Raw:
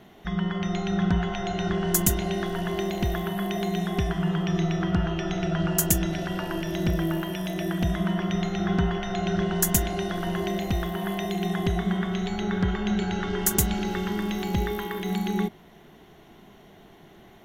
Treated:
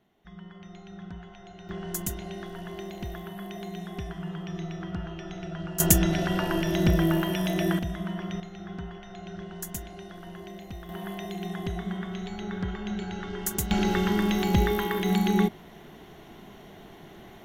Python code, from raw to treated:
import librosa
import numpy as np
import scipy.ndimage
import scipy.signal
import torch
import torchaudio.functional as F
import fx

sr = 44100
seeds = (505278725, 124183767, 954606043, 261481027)

y = fx.gain(x, sr, db=fx.steps((0.0, -18.0), (1.69, -10.0), (5.8, 3.0), (7.79, -7.0), (8.4, -14.0), (10.89, -7.0), (13.71, 3.5)))